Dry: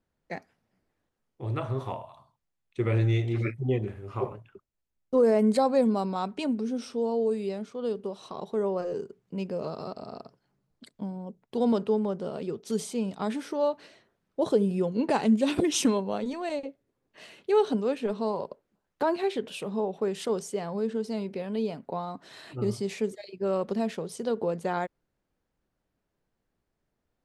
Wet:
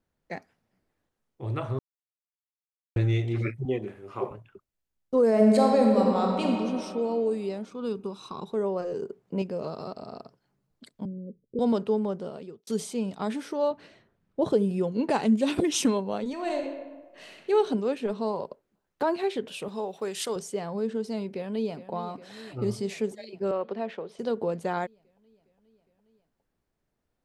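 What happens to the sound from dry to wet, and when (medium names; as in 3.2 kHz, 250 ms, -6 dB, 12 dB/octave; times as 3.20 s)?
1.79–2.96 s: mute
3.65–4.31 s: high-pass 200 Hz
5.29–6.45 s: reverb throw, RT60 2.6 s, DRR -1 dB
7.71–8.52 s: comb 0.8 ms
9.02–9.42 s: peaking EQ 610 Hz +8.5 dB 2.8 oct
11.05–11.59 s: steep low-pass 540 Hz 72 dB/octave
12.14–12.67 s: fade out
13.71–14.53 s: tone controls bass +8 dB, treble -6 dB
16.32–17.50 s: reverb throw, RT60 1.3 s, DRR 2.5 dB
19.68–20.36 s: tilt EQ +3 dB/octave
21.29–21.91 s: echo throw 410 ms, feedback 75%, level -13.5 dB
23.51–24.19 s: three-band isolator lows -13 dB, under 320 Hz, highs -23 dB, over 3.6 kHz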